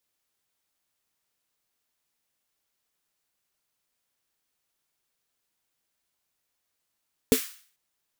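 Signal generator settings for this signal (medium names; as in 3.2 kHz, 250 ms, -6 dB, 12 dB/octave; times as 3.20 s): snare drum length 0.44 s, tones 260 Hz, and 440 Hz, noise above 1.4 kHz, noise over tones -10 dB, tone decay 0.10 s, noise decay 0.48 s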